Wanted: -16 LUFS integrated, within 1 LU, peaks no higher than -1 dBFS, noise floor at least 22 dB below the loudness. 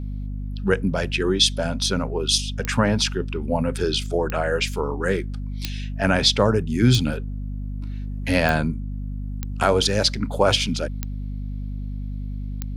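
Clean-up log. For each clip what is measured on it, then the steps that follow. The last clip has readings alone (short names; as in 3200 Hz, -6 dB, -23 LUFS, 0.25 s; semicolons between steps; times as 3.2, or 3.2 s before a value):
clicks 8; hum 50 Hz; harmonics up to 250 Hz; hum level -27 dBFS; loudness -23.0 LUFS; peak -4.5 dBFS; loudness target -16.0 LUFS
-> de-click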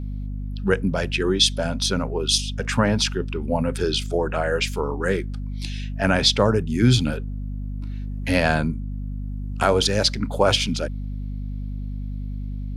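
clicks 0; hum 50 Hz; harmonics up to 250 Hz; hum level -27 dBFS
-> de-hum 50 Hz, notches 5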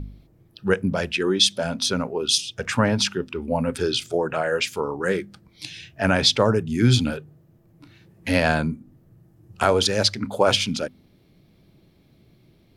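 hum none; loudness -22.0 LUFS; peak -5.0 dBFS; loudness target -16.0 LUFS
-> gain +6 dB; limiter -1 dBFS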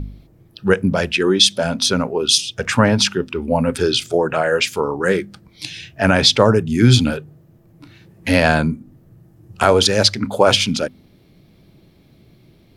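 loudness -16.5 LUFS; peak -1.0 dBFS; noise floor -52 dBFS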